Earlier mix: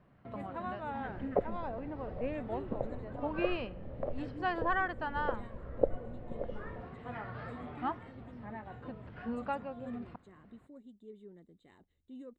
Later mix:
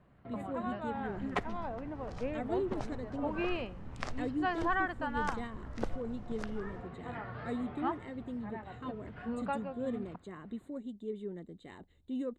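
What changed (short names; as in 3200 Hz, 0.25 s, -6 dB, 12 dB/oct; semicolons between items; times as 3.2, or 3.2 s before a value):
speech +11.5 dB; second sound: remove synth low-pass 550 Hz, resonance Q 5.9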